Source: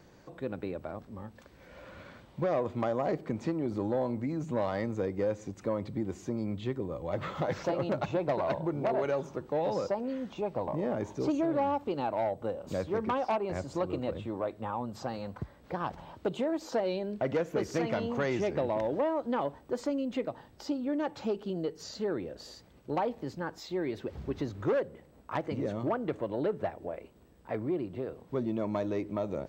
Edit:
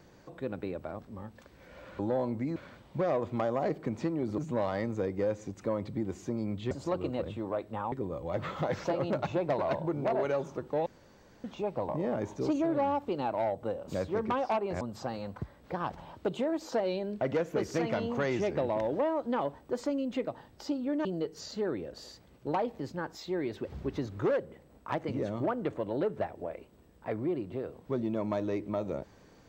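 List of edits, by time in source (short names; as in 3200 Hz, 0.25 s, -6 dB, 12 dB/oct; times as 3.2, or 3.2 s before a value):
3.81–4.38 move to 1.99
9.65–10.23 room tone
13.6–14.81 move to 6.71
21.05–21.48 cut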